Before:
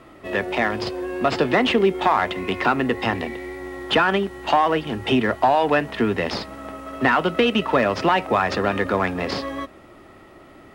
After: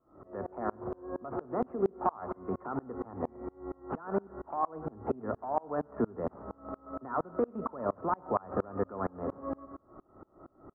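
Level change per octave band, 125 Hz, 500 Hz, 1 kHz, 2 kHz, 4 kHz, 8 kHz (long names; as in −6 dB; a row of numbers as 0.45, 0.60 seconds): −13.5 dB, −12.5 dB, −14.0 dB, −27.5 dB, below −40 dB, can't be measured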